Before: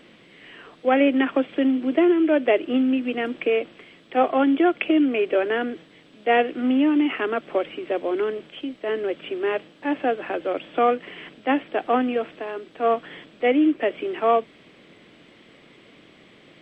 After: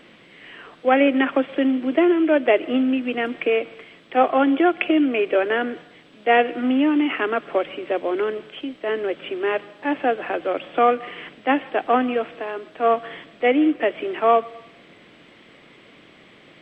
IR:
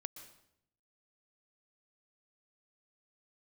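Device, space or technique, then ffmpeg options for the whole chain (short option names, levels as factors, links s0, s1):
filtered reverb send: -filter_complex "[0:a]asplit=2[s0][s1];[s1]highpass=530,lowpass=3300[s2];[1:a]atrim=start_sample=2205[s3];[s2][s3]afir=irnorm=-1:irlink=0,volume=0.596[s4];[s0][s4]amix=inputs=2:normalize=0,volume=1.12"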